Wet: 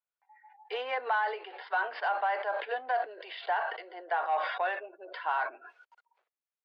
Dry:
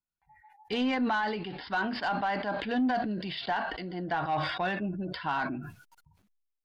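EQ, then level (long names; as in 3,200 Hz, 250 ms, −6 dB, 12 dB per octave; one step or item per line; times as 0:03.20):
Butterworth high-pass 440 Hz 48 dB per octave
low-pass filter 2,300 Hz 12 dB per octave
+1.0 dB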